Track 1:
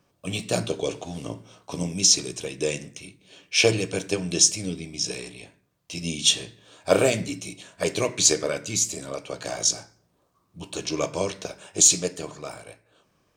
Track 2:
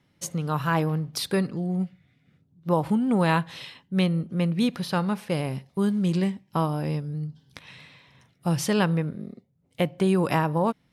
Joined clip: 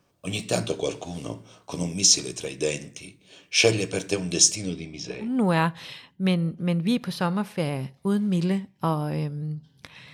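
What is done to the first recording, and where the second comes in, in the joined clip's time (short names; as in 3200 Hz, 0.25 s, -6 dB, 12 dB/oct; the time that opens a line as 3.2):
track 1
4.55–5.35 LPF 9700 Hz -> 1500 Hz
5.27 switch to track 2 from 2.99 s, crossfade 0.16 s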